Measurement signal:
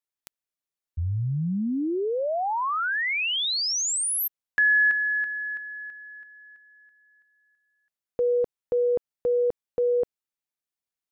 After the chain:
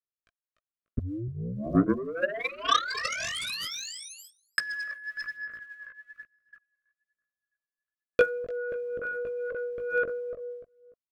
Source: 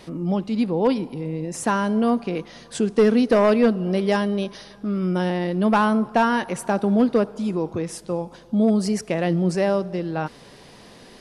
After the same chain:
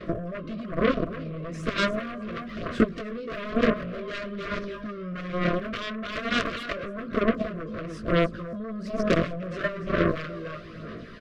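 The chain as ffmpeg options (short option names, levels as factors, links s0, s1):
-filter_complex "[0:a]lowpass=2500,equalizer=f=1300:t=o:w=0.44:g=6,aecho=1:1:295|590|885:0.398|0.0955|0.0229,acompressor=threshold=0.0282:ratio=16:attack=87:release=76:knee=6:detection=peak,asoftclip=type=tanh:threshold=0.0891,agate=range=0.178:threshold=0.00158:ratio=16:release=44:detection=peak,aphaser=in_gain=1:out_gain=1:delay=1.9:decay=0.59:speed=1.1:type=sinusoidal,asplit=2[s0][s1];[s1]adelay=18,volume=0.708[s2];[s0][s2]amix=inputs=2:normalize=0,aeval=exprs='0.316*(cos(1*acos(clip(val(0)/0.316,-1,1)))-cos(1*PI/2))+0.0891*(cos(7*acos(clip(val(0)/0.316,-1,1)))-cos(7*PI/2))':c=same,asuperstop=centerf=850:order=12:qfactor=2.5"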